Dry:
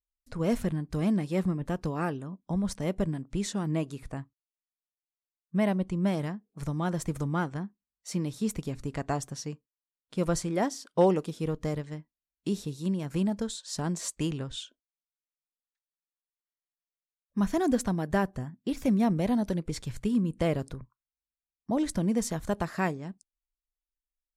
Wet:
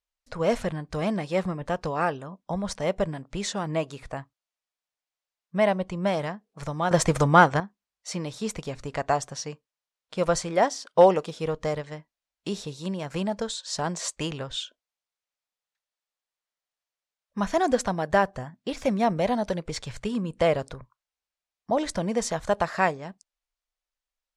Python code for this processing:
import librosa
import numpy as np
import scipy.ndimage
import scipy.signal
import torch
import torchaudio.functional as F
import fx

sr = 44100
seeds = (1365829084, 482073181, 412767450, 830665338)

y = fx.edit(x, sr, fx.clip_gain(start_s=6.91, length_s=0.69, db=9.5), tone=tone)
y = scipy.signal.sosfilt(scipy.signal.butter(2, 6800.0, 'lowpass', fs=sr, output='sos'), y)
y = fx.low_shelf_res(y, sr, hz=420.0, db=-8.0, q=1.5)
y = y * 10.0 ** (7.0 / 20.0)